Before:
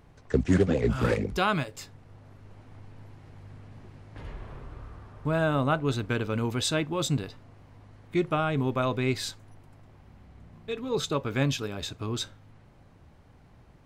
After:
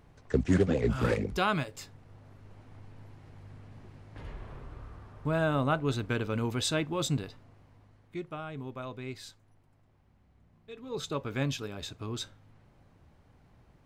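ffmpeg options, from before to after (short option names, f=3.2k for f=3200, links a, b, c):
-af "volume=5.5dB,afade=t=out:st=7.07:d=1.17:silence=0.298538,afade=t=in:st=10.71:d=0.47:silence=0.398107"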